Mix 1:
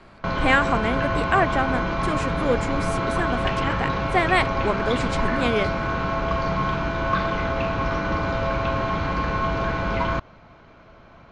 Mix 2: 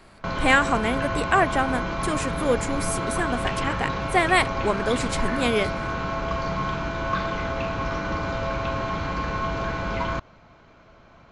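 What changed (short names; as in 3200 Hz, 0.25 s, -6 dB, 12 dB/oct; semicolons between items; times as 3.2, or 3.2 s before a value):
background -3.5 dB; master: remove air absorption 85 m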